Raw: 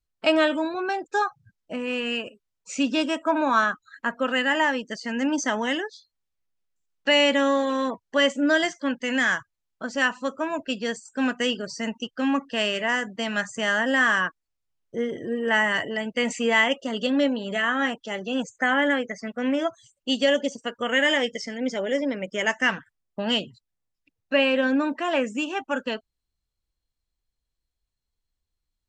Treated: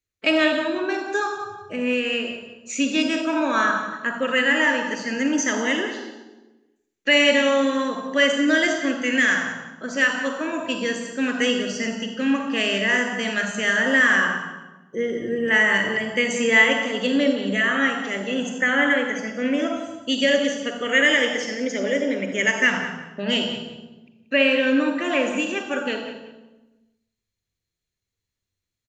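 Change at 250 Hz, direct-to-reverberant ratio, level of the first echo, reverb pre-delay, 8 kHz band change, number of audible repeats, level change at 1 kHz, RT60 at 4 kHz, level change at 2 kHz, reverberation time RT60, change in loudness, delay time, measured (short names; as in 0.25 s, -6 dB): +3.0 dB, 5.0 dB, -12.5 dB, 39 ms, +6.0 dB, 2, -0.5 dB, 0.85 s, +5.0 dB, 1.1 s, +3.5 dB, 0.182 s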